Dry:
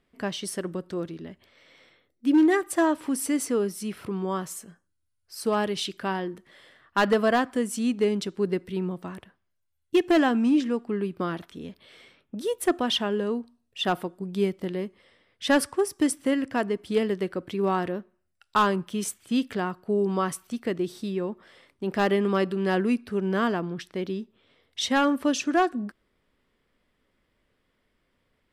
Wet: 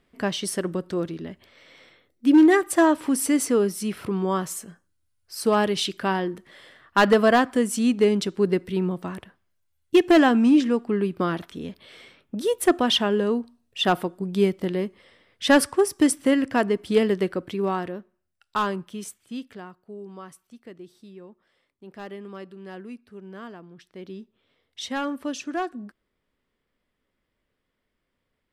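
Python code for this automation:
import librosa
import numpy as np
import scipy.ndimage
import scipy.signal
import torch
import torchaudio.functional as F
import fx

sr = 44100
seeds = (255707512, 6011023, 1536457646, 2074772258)

y = fx.gain(x, sr, db=fx.line((17.24, 4.5), (17.92, -3.0), (18.72, -3.0), (19.95, -15.0), (23.68, -15.0), (24.21, -6.0)))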